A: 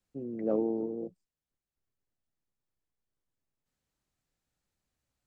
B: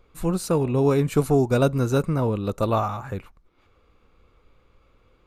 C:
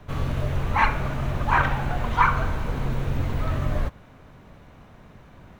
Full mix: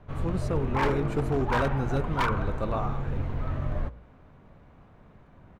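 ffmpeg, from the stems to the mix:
ffmpeg -i stem1.wav -i stem2.wav -i stem3.wav -filter_complex "[0:a]adelay=350,volume=-5.5dB[link_01];[1:a]aemphasis=mode=reproduction:type=50fm,volume=-8dB[link_02];[2:a]lowpass=frequency=1400:poles=1,volume=-4.5dB[link_03];[link_01][link_02][link_03]amix=inputs=3:normalize=0,bandreject=frequency=57.83:width_type=h:width=4,bandreject=frequency=115.66:width_type=h:width=4,bandreject=frequency=173.49:width_type=h:width=4,bandreject=frequency=231.32:width_type=h:width=4,bandreject=frequency=289.15:width_type=h:width=4,bandreject=frequency=346.98:width_type=h:width=4,bandreject=frequency=404.81:width_type=h:width=4,bandreject=frequency=462.64:width_type=h:width=4,bandreject=frequency=520.47:width_type=h:width=4,bandreject=frequency=578.3:width_type=h:width=4,bandreject=frequency=636.13:width_type=h:width=4,aeval=exprs='0.126*(abs(mod(val(0)/0.126+3,4)-2)-1)':channel_layout=same" out.wav

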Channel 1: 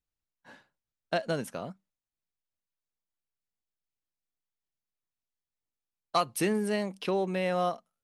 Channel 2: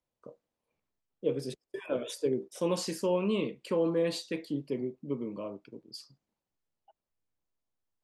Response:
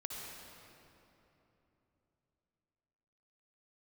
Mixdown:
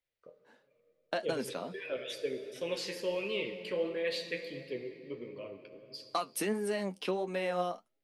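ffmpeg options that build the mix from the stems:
-filter_complex "[0:a]agate=range=-10dB:threshold=-48dB:ratio=16:detection=peak,highpass=frequency=200:width=0.5412,highpass=frequency=200:width=1.3066,acompressor=threshold=-28dB:ratio=6,volume=3dB[link_01];[1:a]equalizer=frequency=125:width_type=o:width=1:gain=-6,equalizer=frequency=250:width_type=o:width=1:gain=-11,equalizer=frequency=500:width_type=o:width=1:gain=3,equalizer=frequency=1000:width_type=o:width=1:gain=-11,equalizer=frequency=2000:width_type=o:width=1:gain=11,equalizer=frequency=4000:width_type=o:width=1:gain=4,equalizer=frequency=8000:width_type=o:width=1:gain=-8,volume=-2dB,asplit=2[link_02][link_03];[link_03]volume=-3.5dB[link_04];[2:a]atrim=start_sample=2205[link_05];[link_04][link_05]afir=irnorm=-1:irlink=0[link_06];[link_01][link_02][link_06]amix=inputs=3:normalize=0,flanger=delay=7.2:depth=4.4:regen=49:speed=1.5:shape=sinusoidal"

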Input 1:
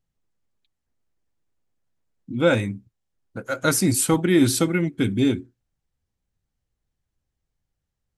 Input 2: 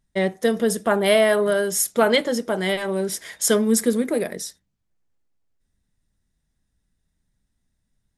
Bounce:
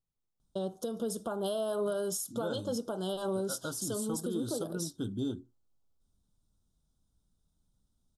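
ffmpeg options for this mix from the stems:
ffmpeg -i stem1.wav -i stem2.wav -filter_complex "[0:a]volume=-10.5dB[link_01];[1:a]acompressor=threshold=-22dB:ratio=6,adelay=400,volume=-2.5dB[link_02];[link_01][link_02]amix=inputs=2:normalize=0,asuperstop=centerf=2100:order=8:qfactor=1.3,alimiter=level_in=1dB:limit=-24dB:level=0:latency=1:release=441,volume=-1dB" out.wav

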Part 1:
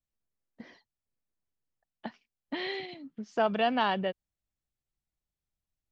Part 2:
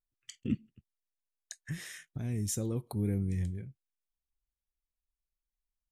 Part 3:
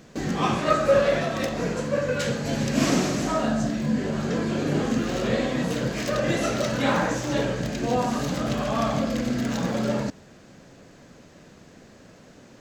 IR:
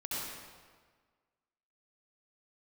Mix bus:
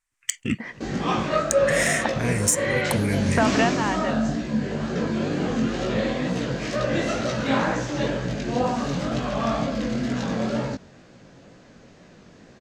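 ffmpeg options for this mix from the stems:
-filter_complex "[0:a]volume=3dB[link_01];[1:a]adynamicsmooth=sensitivity=8:basefreq=4300,crystalizer=i=8:c=0,volume=2dB,asplit=2[link_02][link_03];[2:a]lowpass=6400,flanger=delay=16:depth=6.6:speed=2.1,adelay=650,volume=-3dB[link_04];[link_03]apad=whole_len=261005[link_05];[link_01][link_05]sidechaingate=range=-13dB:threshold=-47dB:ratio=16:detection=peak[link_06];[link_06][link_02]amix=inputs=2:normalize=0,equalizer=frequency=1000:width_type=o:width=1:gain=7,equalizer=frequency=2000:width_type=o:width=1:gain=11,equalizer=frequency=4000:width_type=o:width=1:gain=-7,equalizer=frequency=8000:width_type=o:width=1:gain=10,acompressor=threshold=-25dB:ratio=6,volume=0dB[link_07];[link_04][link_07]amix=inputs=2:normalize=0,dynaudnorm=framelen=110:gausssize=3:maxgain=6dB"

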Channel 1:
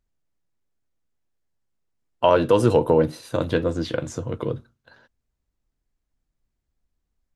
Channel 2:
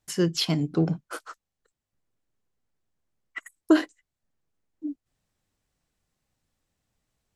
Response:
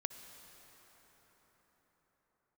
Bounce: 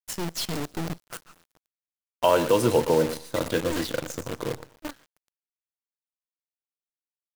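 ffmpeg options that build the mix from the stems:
-filter_complex "[0:a]lowshelf=frequency=100:gain=-9.5,volume=-3.5dB,asplit=3[link_01][link_02][link_03];[link_02]volume=-24dB[link_04];[link_03]volume=-12dB[link_05];[1:a]aeval=exprs='(tanh(31.6*val(0)+0.65)-tanh(0.65))/31.6':channel_layout=same,volume=-3dB,asplit=2[link_06][link_07];[link_07]volume=-11dB[link_08];[2:a]atrim=start_sample=2205[link_09];[link_04][link_08]amix=inputs=2:normalize=0[link_10];[link_10][link_09]afir=irnorm=-1:irlink=0[link_11];[link_05]aecho=0:1:118|236|354:1|0.21|0.0441[link_12];[link_01][link_06][link_11][link_12]amix=inputs=4:normalize=0,highshelf=frequency=4500:gain=7.5,acrusher=bits=6:dc=4:mix=0:aa=0.000001"

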